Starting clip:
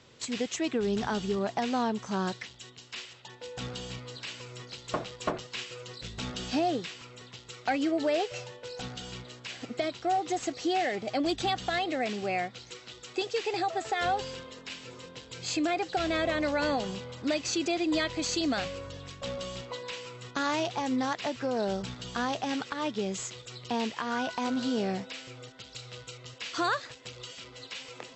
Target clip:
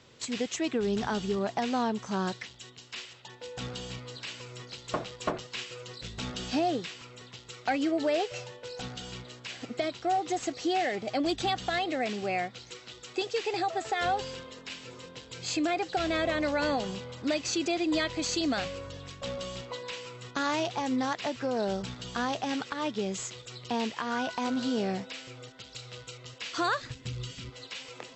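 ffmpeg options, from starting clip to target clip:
-filter_complex "[0:a]asplit=3[s0][s1][s2];[s0]afade=t=out:st=26.8:d=0.02[s3];[s1]asubboost=boost=7.5:cutoff=210,afade=t=in:st=26.8:d=0.02,afade=t=out:st=27.49:d=0.02[s4];[s2]afade=t=in:st=27.49:d=0.02[s5];[s3][s4][s5]amix=inputs=3:normalize=0"

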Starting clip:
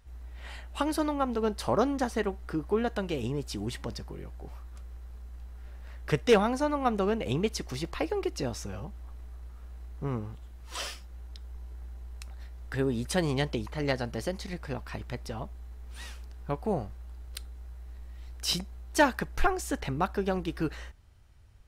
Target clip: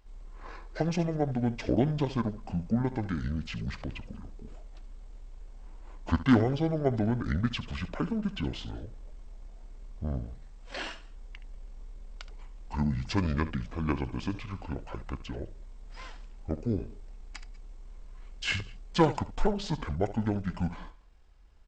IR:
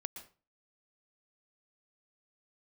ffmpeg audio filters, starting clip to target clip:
-filter_complex "[0:a]asplit=2[s0][s1];[1:a]atrim=start_sample=2205,afade=t=out:st=0.18:d=0.01,atrim=end_sample=8379,adelay=72[s2];[s1][s2]afir=irnorm=-1:irlink=0,volume=0.251[s3];[s0][s3]amix=inputs=2:normalize=0,asetrate=24046,aresample=44100,atempo=1.83401"

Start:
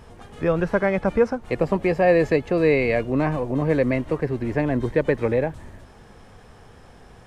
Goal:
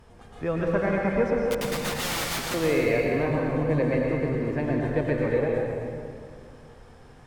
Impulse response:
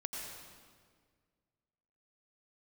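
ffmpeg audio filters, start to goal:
-filter_complex "[0:a]asettb=1/sr,asplit=3[s0][s1][s2];[s0]atrim=end=1.494[s3];[s1]atrim=start=1.49:end=2.54,asetpts=PTS-STARTPTS,afade=t=in:d=0.004:c=qsin,afade=t=out:st=1.046:d=0.004:c=qsin,aeval=exprs='(mod(10*val(0)+1,2)-1)/10':c=same[s4];[s2]atrim=start=2.536[s5];[s3][s4]acrossfade=d=0.004:c1=hsin:c2=qsin[s6];[s6][s5]acrossfade=d=0.004:c1=qsin:c2=hsin[s7];[1:a]atrim=start_sample=2205,asetrate=35280,aresample=44100[s8];[s7][s8]afir=irnorm=-1:irlink=0,volume=0.562"

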